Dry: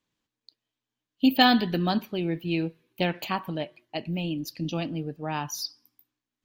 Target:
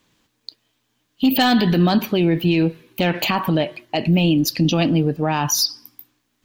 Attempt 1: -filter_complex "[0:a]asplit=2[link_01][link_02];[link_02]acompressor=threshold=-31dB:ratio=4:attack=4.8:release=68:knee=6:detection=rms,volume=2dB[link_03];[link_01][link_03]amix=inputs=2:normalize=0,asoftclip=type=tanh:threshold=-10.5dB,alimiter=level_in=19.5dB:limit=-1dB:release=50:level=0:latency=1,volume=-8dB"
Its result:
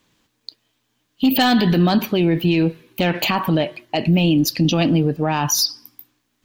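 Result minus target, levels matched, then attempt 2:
downward compressor: peak gain reduction −5 dB
-filter_complex "[0:a]asplit=2[link_01][link_02];[link_02]acompressor=threshold=-37.5dB:ratio=4:attack=4.8:release=68:knee=6:detection=rms,volume=2dB[link_03];[link_01][link_03]amix=inputs=2:normalize=0,asoftclip=type=tanh:threshold=-10.5dB,alimiter=level_in=19.5dB:limit=-1dB:release=50:level=0:latency=1,volume=-8dB"

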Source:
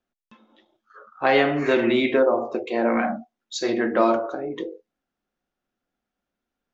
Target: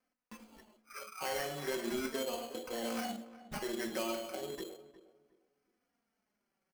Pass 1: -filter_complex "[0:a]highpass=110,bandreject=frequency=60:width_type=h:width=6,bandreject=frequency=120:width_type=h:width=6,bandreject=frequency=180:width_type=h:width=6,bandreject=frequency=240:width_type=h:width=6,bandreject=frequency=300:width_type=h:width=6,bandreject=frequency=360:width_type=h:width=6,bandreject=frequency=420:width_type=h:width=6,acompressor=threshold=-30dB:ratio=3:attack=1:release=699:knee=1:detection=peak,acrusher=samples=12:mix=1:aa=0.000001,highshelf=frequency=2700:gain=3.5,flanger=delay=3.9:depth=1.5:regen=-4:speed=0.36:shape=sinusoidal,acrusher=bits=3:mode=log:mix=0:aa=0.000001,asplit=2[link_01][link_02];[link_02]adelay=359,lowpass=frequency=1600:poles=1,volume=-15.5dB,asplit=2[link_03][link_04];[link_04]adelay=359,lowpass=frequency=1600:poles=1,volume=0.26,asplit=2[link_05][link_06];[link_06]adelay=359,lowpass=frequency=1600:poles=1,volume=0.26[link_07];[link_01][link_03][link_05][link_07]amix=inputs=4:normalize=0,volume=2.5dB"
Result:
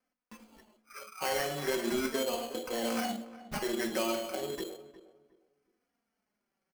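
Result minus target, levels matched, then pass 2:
downward compressor: peak gain reduction −5 dB
-filter_complex "[0:a]highpass=110,bandreject=frequency=60:width_type=h:width=6,bandreject=frequency=120:width_type=h:width=6,bandreject=frequency=180:width_type=h:width=6,bandreject=frequency=240:width_type=h:width=6,bandreject=frequency=300:width_type=h:width=6,bandreject=frequency=360:width_type=h:width=6,bandreject=frequency=420:width_type=h:width=6,acompressor=threshold=-37.5dB:ratio=3:attack=1:release=699:knee=1:detection=peak,acrusher=samples=12:mix=1:aa=0.000001,highshelf=frequency=2700:gain=3.5,flanger=delay=3.9:depth=1.5:regen=-4:speed=0.36:shape=sinusoidal,acrusher=bits=3:mode=log:mix=0:aa=0.000001,asplit=2[link_01][link_02];[link_02]adelay=359,lowpass=frequency=1600:poles=1,volume=-15.5dB,asplit=2[link_03][link_04];[link_04]adelay=359,lowpass=frequency=1600:poles=1,volume=0.26,asplit=2[link_05][link_06];[link_06]adelay=359,lowpass=frequency=1600:poles=1,volume=0.26[link_07];[link_01][link_03][link_05][link_07]amix=inputs=4:normalize=0,volume=2.5dB"

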